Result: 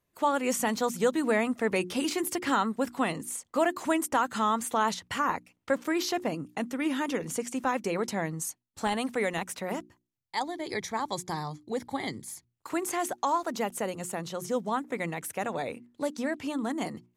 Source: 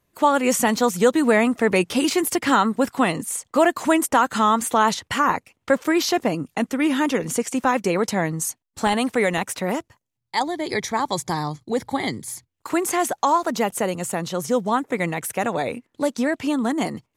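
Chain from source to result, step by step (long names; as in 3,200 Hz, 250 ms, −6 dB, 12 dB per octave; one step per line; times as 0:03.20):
mains-hum notches 60/120/180/240/300/360 Hz
level −8.5 dB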